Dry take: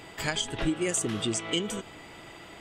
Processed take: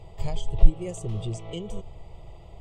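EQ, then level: tilt -3.5 dB/oct; low shelf 74 Hz +10 dB; fixed phaser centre 650 Hz, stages 4; -4.0 dB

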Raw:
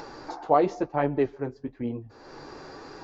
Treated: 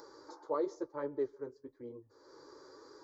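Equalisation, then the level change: HPF 410 Hz 6 dB/oct; bell 1700 Hz -9 dB 1.4 oct; fixed phaser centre 730 Hz, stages 6; -5.5 dB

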